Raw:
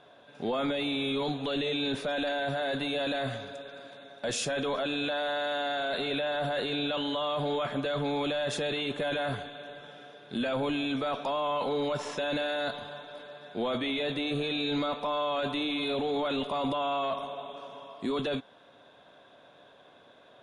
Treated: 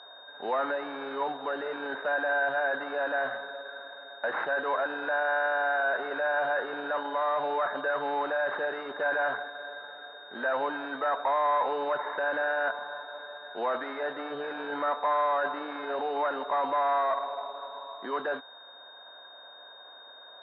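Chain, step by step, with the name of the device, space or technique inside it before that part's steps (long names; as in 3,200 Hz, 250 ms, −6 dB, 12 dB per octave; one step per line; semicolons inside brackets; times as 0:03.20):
toy sound module (linearly interpolated sample-rate reduction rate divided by 6×; switching amplifier with a slow clock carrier 3,700 Hz; loudspeaker in its box 690–4,000 Hz, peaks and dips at 940 Hz +4 dB, 1,600 Hz +9 dB, 2,500 Hz −9 dB, 3,600 Hz −9 dB)
level +6 dB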